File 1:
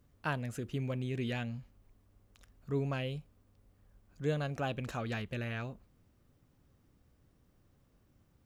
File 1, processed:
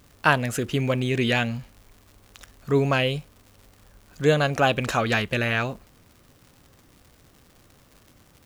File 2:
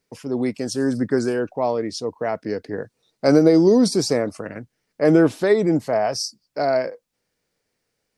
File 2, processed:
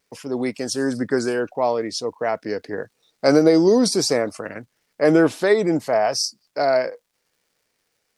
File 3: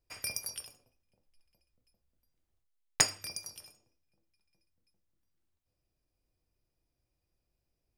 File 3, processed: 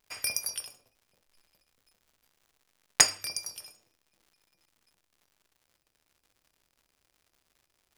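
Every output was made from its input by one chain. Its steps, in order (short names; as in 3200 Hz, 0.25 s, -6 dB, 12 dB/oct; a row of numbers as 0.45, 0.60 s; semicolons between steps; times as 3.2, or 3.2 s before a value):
vibrato 0.55 Hz 8.9 cents; low shelf 350 Hz -9 dB; crackle 180/s -59 dBFS; normalise peaks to -3 dBFS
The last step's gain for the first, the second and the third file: +18.0, +3.5, +6.0 dB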